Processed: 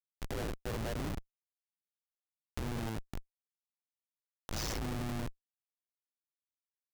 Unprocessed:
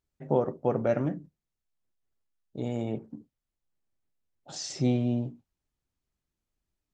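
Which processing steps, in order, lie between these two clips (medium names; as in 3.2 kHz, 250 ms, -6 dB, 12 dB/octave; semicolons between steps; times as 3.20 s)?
high-pass 180 Hz 12 dB/octave; peak limiter -24 dBFS, peak gain reduction 11.5 dB; AM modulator 110 Hz, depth 90%; Schmitt trigger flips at -41 dBFS; tape noise reduction on one side only encoder only; trim +6.5 dB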